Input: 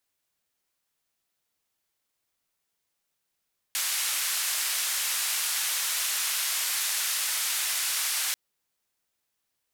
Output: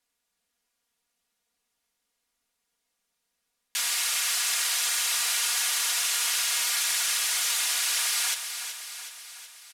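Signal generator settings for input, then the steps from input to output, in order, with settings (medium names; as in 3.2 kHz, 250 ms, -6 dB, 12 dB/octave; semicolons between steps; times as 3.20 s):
noise band 1.3–13 kHz, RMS -28.5 dBFS 4.59 s
low-pass 12 kHz 12 dB/octave; comb 4.2 ms, depth 75%; feedback delay 373 ms, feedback 58%, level -9 dB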